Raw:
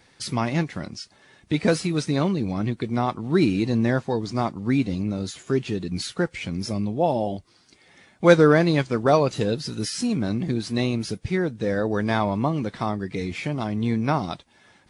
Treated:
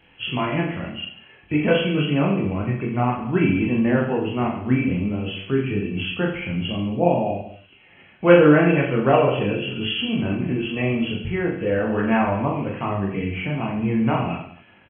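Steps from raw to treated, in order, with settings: knee-point frequency compression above 2.3 kHz 4:1; chorus voices 2, 0.5 Hz, delay 22 ms, depth 1.5 ms; reverse bouncing-ball echo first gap 40 ms, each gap 1.15×, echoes 5; trim +3 dB

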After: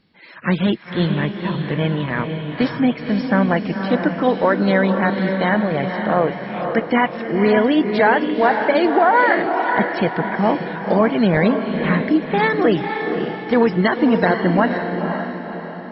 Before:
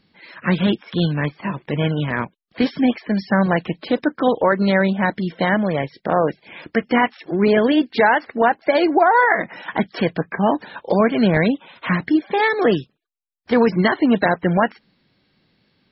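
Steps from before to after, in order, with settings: treble shelf 4.9 kHz -5.5 dB; echo that smears into a reverb 519 ms, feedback 46%, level -5.5 dB

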